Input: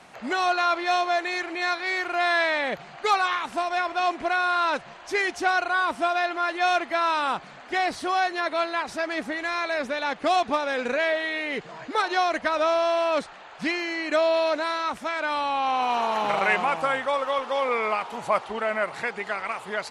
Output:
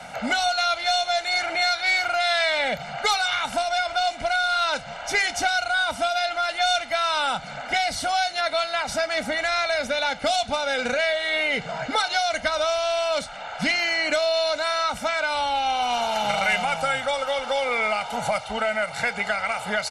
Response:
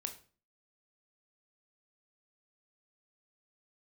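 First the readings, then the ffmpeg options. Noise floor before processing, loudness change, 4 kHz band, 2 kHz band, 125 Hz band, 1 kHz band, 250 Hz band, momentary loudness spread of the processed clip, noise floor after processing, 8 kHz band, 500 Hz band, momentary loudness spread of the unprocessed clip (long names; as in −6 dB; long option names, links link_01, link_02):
−45 dBFS, +2.0 dB, +8.0 dB, +2.5 dB, can't be measured, 0.0 dB, −3.0 dB, 4 LU, −37 dBFS, +10.0 dB, +0.5 dB, 7 LU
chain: -filter_complex "[0:a]aecho=1:1:1.4:0.88,acrossover=split=130|3000[link_01][link_02][link_03];[link_02]acompressor=threshold=-31dB:ratio=6[link_04];[link_01][link_04][link_03]amix=inputs=3:normalize=0,aeval=exprs='0.562*(cos(1*acos(clip(val(0)/0.562,-1,1)))-cos(1*PI/2))+0.0112*(cos(6*acos(clip(val(0)/0.562,-1,1)))-cos(6*PI/2))':channel_layout=same,asplit=2[link_05][link_06];[1:a]atrim=start_sample=2205,adelay=29[link_07];[link_06][link_07]afir=irnorm=-1:irlink=0,volume=-14dB[link_08];[link_05][link_08]amix=inputs=2:normalize=0,volume=7.5dB"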